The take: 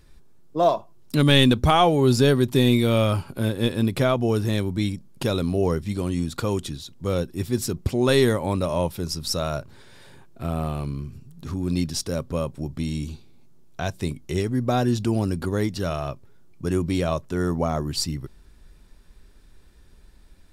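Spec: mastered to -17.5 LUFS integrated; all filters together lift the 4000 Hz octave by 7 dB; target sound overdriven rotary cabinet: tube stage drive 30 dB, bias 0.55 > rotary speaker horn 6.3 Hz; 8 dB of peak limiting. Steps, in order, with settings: bell 4000 Hz +8.5 dB; limiter -9.5 dBFS; tube stage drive 30 dB, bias 0.55; rotary speaker horn 6.3 Hz; gain +18.5 dB

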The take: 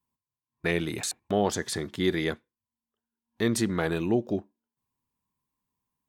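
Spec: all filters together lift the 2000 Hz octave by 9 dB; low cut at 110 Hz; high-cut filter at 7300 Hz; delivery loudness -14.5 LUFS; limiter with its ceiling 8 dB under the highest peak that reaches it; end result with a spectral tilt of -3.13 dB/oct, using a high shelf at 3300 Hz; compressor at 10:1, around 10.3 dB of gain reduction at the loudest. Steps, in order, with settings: HPF 110 Hz; LPF 7300 Hz; bell 2000 Hz +8 dB; high shelf 3300 Hz +8 dB; compressor 10:1, threshold -26 dBFS; gain +18.5 dB; limiter -1.5 dBFS

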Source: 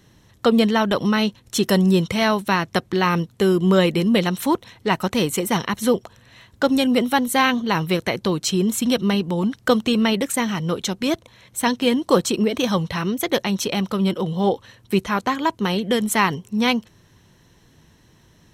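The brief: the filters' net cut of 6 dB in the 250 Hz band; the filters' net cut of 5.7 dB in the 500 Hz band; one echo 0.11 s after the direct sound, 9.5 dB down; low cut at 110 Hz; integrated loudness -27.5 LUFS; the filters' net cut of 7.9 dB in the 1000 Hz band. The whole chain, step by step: HPF 110 Hz; bell 250 Hz -6.5 dB; bell 500 Hz -3 dB; bell 1000 Hz -8.5 dB; echo 0.11 s -9.5 dB; gain -2.5 dB

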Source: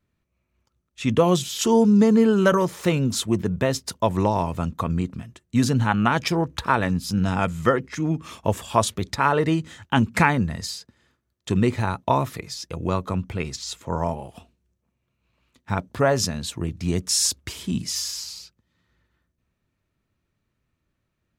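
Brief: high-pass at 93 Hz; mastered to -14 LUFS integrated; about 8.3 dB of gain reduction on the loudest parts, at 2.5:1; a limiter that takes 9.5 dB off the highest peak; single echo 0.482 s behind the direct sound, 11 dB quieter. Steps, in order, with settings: HPF 93 Hz; compressor 2.5:1, threshold -26 dBFS; limiter -19.5 dBFS; echo 0.482 s -11 dB; gain +16.5 dB

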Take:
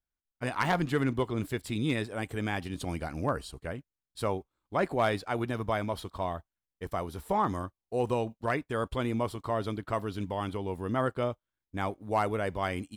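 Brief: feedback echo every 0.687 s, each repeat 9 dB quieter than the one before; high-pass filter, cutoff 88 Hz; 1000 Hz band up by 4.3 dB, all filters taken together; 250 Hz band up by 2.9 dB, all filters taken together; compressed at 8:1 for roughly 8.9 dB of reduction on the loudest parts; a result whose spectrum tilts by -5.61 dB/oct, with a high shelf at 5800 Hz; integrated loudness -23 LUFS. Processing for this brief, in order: HPF 88 Hz; bell 250 Hz +3.5 dB; bell 1000 Hz +5.5 dB; high shelf 5800 Hz -5.5 dB; compressor 8:1, threshold -28 dBFS; feedback echo 0.687 s, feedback 35%, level -9 dB; gain +11.5 dB

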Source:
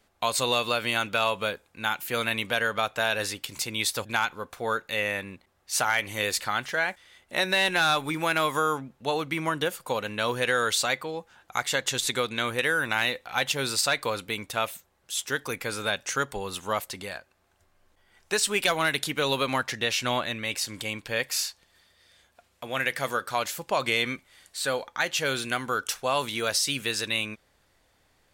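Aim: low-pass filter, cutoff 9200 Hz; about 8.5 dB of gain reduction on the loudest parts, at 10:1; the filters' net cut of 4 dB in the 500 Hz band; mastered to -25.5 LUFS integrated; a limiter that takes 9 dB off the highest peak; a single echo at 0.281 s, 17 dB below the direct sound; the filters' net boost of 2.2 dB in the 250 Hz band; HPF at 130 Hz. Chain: HPF 130 Hz; LPF 9200 Hz; bell 250 Hz +5 dB; bell 500 Hz -6 dB; compressor 10:1, threshold -29 dBFS; limiter -23 dBFS; echo 0.281 s -17 dB; gain +10 dB

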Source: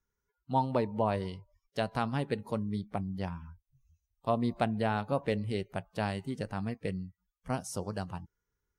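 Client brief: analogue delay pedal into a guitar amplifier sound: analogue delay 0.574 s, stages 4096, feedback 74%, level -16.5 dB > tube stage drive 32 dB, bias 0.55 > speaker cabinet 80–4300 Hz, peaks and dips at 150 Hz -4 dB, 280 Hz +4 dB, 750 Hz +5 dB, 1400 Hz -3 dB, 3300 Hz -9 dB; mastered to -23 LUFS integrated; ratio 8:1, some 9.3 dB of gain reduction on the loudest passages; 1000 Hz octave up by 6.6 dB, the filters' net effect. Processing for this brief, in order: bell 1000 Hz +5.5 dB; compressor 8:1, threshold -29 dBFS; analogue delay 0.574 s, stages 4096, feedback 74%, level -16.5 dB; tube stage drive 32 dB, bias 0.55; speaker cabinet 80–4300 Hz, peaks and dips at 150 Hz -4 dB, 280 Hz +4 dB, 750 Hz +5 dB, 1400 Hz -3 dB, 3300 Hz -9 dB; gain +18 dB

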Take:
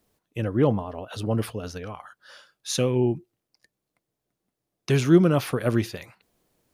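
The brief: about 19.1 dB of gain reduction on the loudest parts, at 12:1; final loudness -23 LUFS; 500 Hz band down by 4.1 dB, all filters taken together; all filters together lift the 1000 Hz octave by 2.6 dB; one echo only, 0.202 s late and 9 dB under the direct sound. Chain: bell 500 Hz -7 dB; bell 1000 Hz +5.5 dB; compressor 12:1, threshold -32 dBFS; echo 0.202 s -9 dB; gain +15 dB

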